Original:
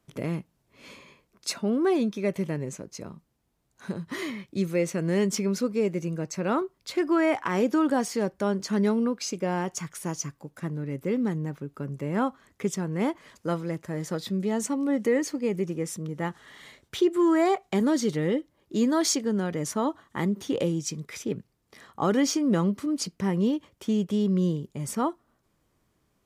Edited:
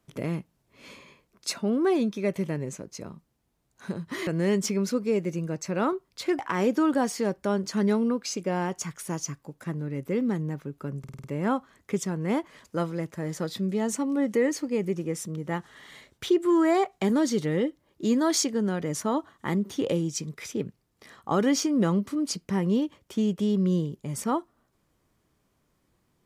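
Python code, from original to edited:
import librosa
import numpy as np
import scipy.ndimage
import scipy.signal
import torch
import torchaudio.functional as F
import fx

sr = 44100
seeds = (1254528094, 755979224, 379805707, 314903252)

y = fx.edit(x, sr, fx.cut(start_s=4.27, length_s=0.69),
    fx.cut(start_s=7.08, length_s=0.27),
    fx.stutter(start_s=11.95, slice_s=0.05, count=6), tone=tone)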